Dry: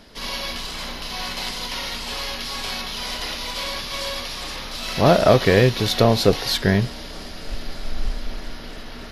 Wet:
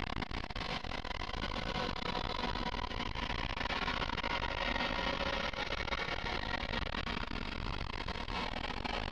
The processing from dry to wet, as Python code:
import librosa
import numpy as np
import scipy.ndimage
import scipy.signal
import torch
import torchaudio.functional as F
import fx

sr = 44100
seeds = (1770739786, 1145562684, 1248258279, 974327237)

y = scipy.signal.sosfilt(scipy.signal.butter(2, 2300.0, 'lowpass', fs=sr, output='sos'), x)
y = fx.paulstretch(y, sr, seeds[0], factor=15.0, window_s=0.1, from_s=1.49)
y = fx.transformer_sat(y, sr, knee_hz=320.0)